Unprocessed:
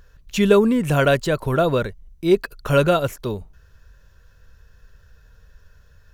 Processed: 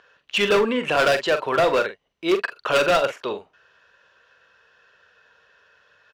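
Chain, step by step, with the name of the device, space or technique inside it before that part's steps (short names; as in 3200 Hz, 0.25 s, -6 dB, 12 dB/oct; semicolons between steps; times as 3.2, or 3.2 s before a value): megaphone (BPF 550–3300 Hz; bell 2900 Hz +6 dB 0.42 oct; hard clip -20 dBFS, distortion -8 dB; doubler 44 ms -9 dB); gain +5.5 dB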